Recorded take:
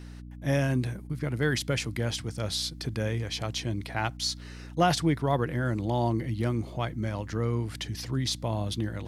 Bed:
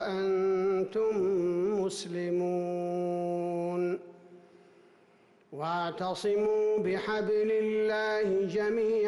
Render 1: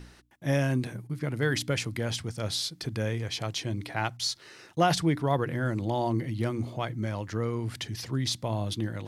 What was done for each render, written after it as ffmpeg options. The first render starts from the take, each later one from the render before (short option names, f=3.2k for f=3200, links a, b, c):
-af "bandreject=f=60:t=h:w=4,bandreject=f=120:t=h:w=4,bandreject=f=180:t=h:w=4,bandreject=f=240:t=h:w=4,bandreject=f=300:t=h:w=4"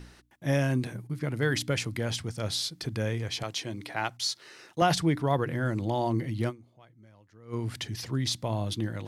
-filter_complex "[0:a]asettb=1/sr,asplit=3[a][b][c];[a]atrim=end=3.434[d];[b]atrim=start=3.43:end=4.82,asetpts=PTS-STARTPTS,afade=t=in:d=0.004:c=qsin,afade=t=out:st=1.386:d=0.004:c=qsin,highpass=f=250:p=1[e];[c]atrim=start=4.816[f];[d][e]acrossfade=d=0.004:c1=hsin:c2=qsin[g];[g][f]acrossfade=d=0.004:c1=qsin:c2=hsin,asplit=3[h][i][j];[h]atrim=end=6.77,asetpts=PTS-STARTPTS,afade=t=out:st=6.49:d=0.28:c=exp:silence=0.0630957[k];[i]atrim=start=6.77:end=7.26,asetpts=PTS-STARTPTS,volume=-24dB[l];[j]atrim=start=7.26,asetpts=PTS-STARTPTS,afade=t=in:d=0.28:c=exp:silence=0.0630957[m];[k][l][m]concat=n=3:v=0:a=1"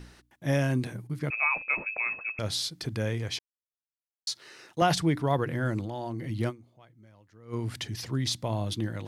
-filter_complex "[0:a]asettb=1/sr,asplit=3[a][b][c];[a]atrim=end=1.304[d];[b]atrim=start=1.3:end=2.39,asetpts=PTS-STARTPTS,afade=t=in:d=0.004:c=qsin,afade=t=out:st=1.086:d=0.004:c=qsin,lowpass=f=2.3k:t=q:w=0.5098,lowpass=f=2.3k:t=q:w=0.6013,lowpass=f=2.3k:t=q:w=0.9,lowpass=f=2.3k:t=q:w=2.563,afreqshift=-2700[e];[c]atrim=start=2.386[f];[d][e]acrossfade=d=0.004:c1=hsin:c2=qsin[g];[g][f]acrossfade=d=0.004:c1=qsin:c2=hsin,asettb=1/sr,asplit=3[h][i][j];[h]atrim=end=5.804[k];[i]atrim=start=5.8:end=6.3,asetpts=PTS-STARTPTS,afade=t=in:d=0.004:c=qsin,afade=t=out:st=0.496:d=0.004:c=qsin,acompressor=threshold=-30dB:ratio=6:attack=3.2:release=140:knee=1:detection=peak[l];[j]atrim=start=6.296[m];[k][l]acrossfade=d=0.004:c1=hsin:c2=qsin[n];[n][m]acrossfade=d=0.004:c1=qsin:c2=hsin,asplit=3[o][p][q];[o]atrim=end=3.39,asetpts=PTS-STARTPTS,afade=t=out:st=3.386:d=0.004:c=hsin[r];[p]atrim=start=3.39:end=4.27,asetpts=PTS-STARTPTS,volume=0[s];[q]atrim=start=4.27,asetpts=PTS-STARTPTS,afade=t=in:d=0.004:c=hsin[t];[r][s][t]concat=n=3:v=0:a=1"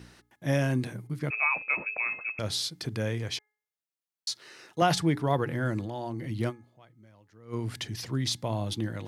-af "highpass=79,bandreject=f=422.1:t=h:w=4,bandreject=f=844.2:t=h:w=4,bandreject=f=1.2663k:t=h:w=4,bandreject=f=1.6884k:t=h:w=4,bandreject=f=2.1105k:t=h:w=4"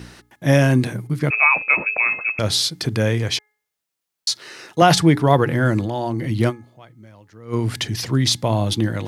-af "volume=11.5dB,alimiter=limit=-1dB:level=0:latency=1"